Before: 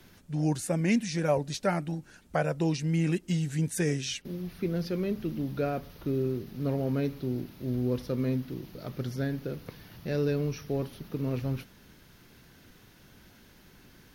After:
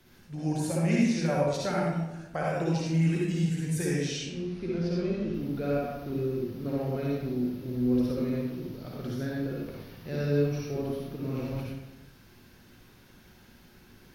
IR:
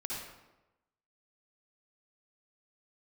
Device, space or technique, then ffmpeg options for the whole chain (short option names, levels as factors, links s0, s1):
bathroom: -filter_complex "[0:a]asettb=1/sr,asplit=3[s0][s1][s2];[s0]atrim=end=4.084[s3];[s1]atrim=start=4.08:end=5.34,asetpts=PTS-STARTPTS,afade=t=in:d=0.004:c=qsin,afade=t=out:st=1.256:d=0.004:c=qsin,lowpass=f=8200:w=0.5412,lowpass=f=8200:w=1.3066[s4];[s2]atrim=start=5.336[s5];[s3][s4]acrossfade=d=0.004:c1=hsin:c2=qsin[s6];[s6][s5]acrossfade=d=0.004:c1=qsin:c2=hsin[s7];[1:a]atrim=start_sample=2205[s8];[s7][s8]afir=irnorm=-1:irlink=0,volume=0.841"